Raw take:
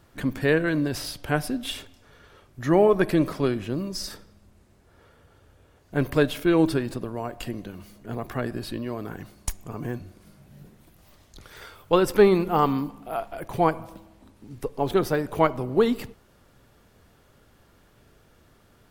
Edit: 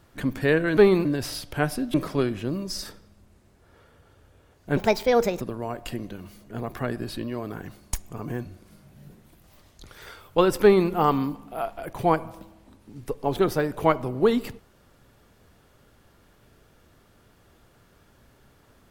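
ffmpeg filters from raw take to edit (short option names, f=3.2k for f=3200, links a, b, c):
-filter_complex "[0:a]asplit=6[a][b][c][d][e][f];[a]atrim=end=0.772[g];[b]atrim=start=12.168:end=12.452[h];[c]atrim=start=0.768:end=1.662[i];[d]atrim=start=3.188:end=6.024[j];[e]atrim=start=6.02:end=6.96,asetpts=PTS-STARTPTS,asetrate=64386,aresample=44100,atrim=end_sample=28393,asetpts=PTS-STARTPTS[k];[f]atrim=start=6.956[l];[g][h]acrossfade=d=0.004:c1=hsin:c2=hsin[m];[m][i]acrossfade=d=0.004:c1=hsin:c2=hsin[n];[n][j]acrossfade=d=0.004:c1=hsin:c2=hsin[o];[o][k]acrossfade=d=0.004:c1=hsin:c2=hsin[p];[p][l]acrossfade=d=0.004:c1=hsin:c2=hsin"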